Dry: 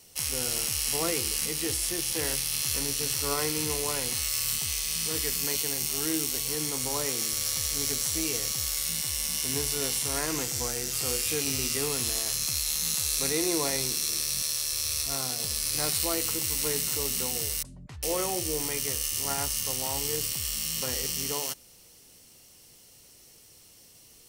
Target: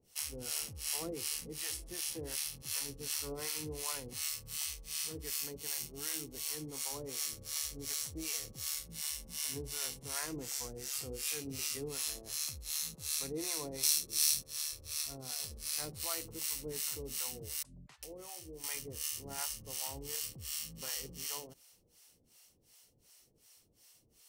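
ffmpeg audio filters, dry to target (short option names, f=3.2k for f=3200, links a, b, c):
-filter_complex "[0:a]asettb=1/sr,asplit=3[a][b][c];[a]atrim=end=13.834[d];[b]atrim=start=13.83:end=14.44,asetpts=PTS-STARTPTS,afade=t=in:d=0.004:c=qsin,afade=t=out:st=0.606:d=0.004:c=qsin,highshelf=f=2.3k:g=9.5[e];[c]atrim=start=14.436[f];[d][e]acrossfade=d=0.004:c1=hsin:c2=qsin[g];[g][f]acrossfade=d=0.004:c1=qsin:c2=hsin,asettb=1/sr,asplit=3[h][i][j];[h]atrim=end=17.624[k];[i]atrim=start=17.62:end=18.64,asetpts=PTS-STARTPTS,afade=t=in:d=0.004:c=qsin,afade=t=out:st=1.016:d=0.004:c=qsin,acompressor=threshold=-35dB:ratio=4[l];[j]atrim=start=18.636[m];[k][l]acrossfade=d=0.004:c1=hsin:c2=qsin[n];[n][m]acrossfade=d=0.004:c1=qsin:c2=hsin,acrossover=split=630[o][p];[o]aeval=exprs='val(0)*(1-1/2+1/2*cos(2*PI*2.7*n/s))':c=same[q];[p]aeval=exprs='val(0)*(1-1/2-1/2*cos(2*PI*2.7*n/s))':c=same[r];[q][r]amix=inputs=2:normalize=0,volume=-6.5dB"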